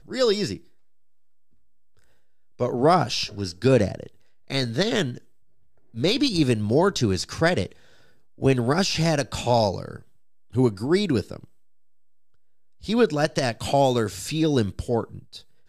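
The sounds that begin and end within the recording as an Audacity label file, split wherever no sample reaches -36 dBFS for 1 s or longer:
2.600000	11.440000	sound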